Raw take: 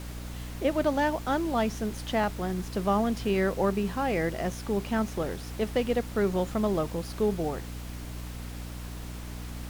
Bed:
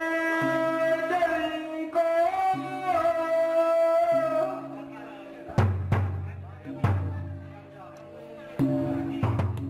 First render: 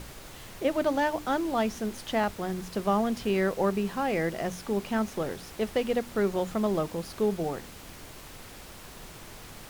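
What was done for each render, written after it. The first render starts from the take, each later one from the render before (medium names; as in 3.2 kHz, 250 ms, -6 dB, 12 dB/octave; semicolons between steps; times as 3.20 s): hum notches 60/120/180/240/300 Hz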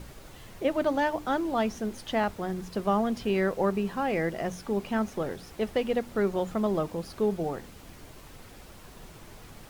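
noise reduction 6 dB, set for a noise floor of -46 dBFS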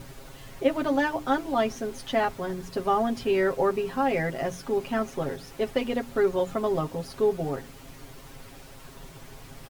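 comb 7.4 ms, depth 85%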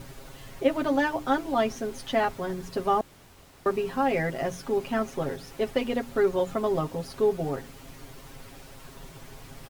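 3.01–3.66 s: room tone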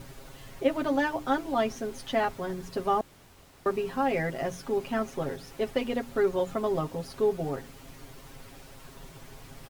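trim -2 dB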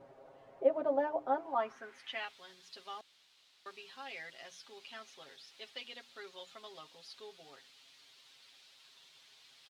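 band-pass sweep 620 Hz -> 3.8 kHz, 1.28–2.39 s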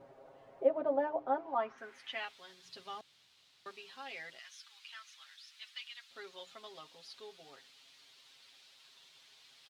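0.65–1.78 s: distance through air 120 m; 2.65–3.72 s: peaking EQ 120 Hz +13.5 dB 1.5 oct; 4.39–6.11 s: high-pass 1.2 kHz 24 dB/octave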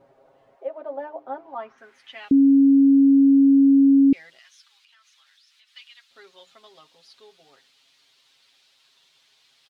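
0.55–1.26 s: high-pass 620 Hz -> 200 Hz; 2.31–4.13 s: bleep 275 Hz -11 dBFS; 4.67–5.72 s: compression 5:1, threshold -55 dBFS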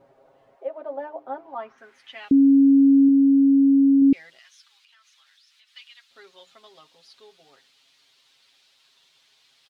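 3.05–4.02 s: doubling 35 ms -12 dB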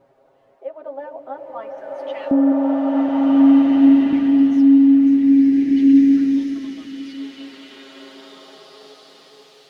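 repeats whose band climbs or falls 206 ms, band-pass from 360 Hz, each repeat 0.7 oct, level -6 dB; swelling reverb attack 1920 ms, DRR -8 dB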